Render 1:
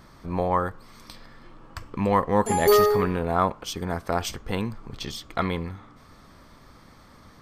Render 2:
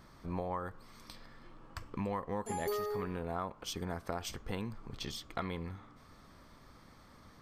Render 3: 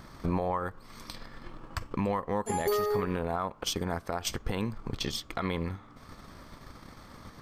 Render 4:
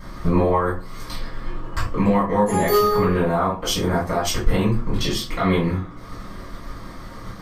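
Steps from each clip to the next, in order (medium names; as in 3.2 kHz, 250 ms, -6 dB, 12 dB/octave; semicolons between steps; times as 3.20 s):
compression 8:1, threshold -26 dBFS, peak gain reduction 12.5 dB; trim -7 dB
transient shaper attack +7 dB, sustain -6 dB; peak limiter -28 dBFS, peak gain reduction 12 dB; trim +8.5 dB
reverberation, pre-delay 3 ms, DRR -10 dB; trim -4.5 dB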